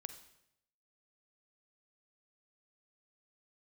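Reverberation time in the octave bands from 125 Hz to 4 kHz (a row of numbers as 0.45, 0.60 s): 1.0, 0.80, 0.85, 0.75, 0.75, 0.70 s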